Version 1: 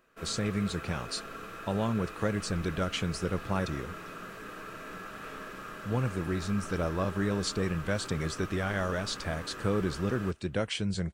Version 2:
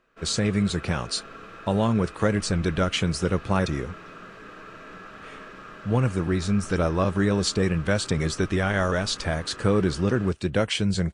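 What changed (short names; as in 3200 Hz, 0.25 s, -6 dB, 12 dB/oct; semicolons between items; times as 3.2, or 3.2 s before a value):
speech +7.5 dB; background: add LPF 5500 Hz 12 dB/oct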